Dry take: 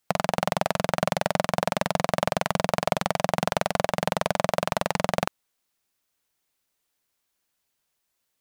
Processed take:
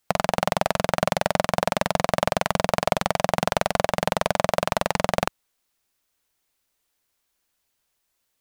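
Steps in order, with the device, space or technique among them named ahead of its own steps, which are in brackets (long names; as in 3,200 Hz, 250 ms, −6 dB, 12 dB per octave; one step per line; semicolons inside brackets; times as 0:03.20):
low shelf boost with a cut just above (low-shelf EQ 70 Hz +6 dB; parametric band 160 Hz −3 dB 0.94 octaves)
level +2.5 dB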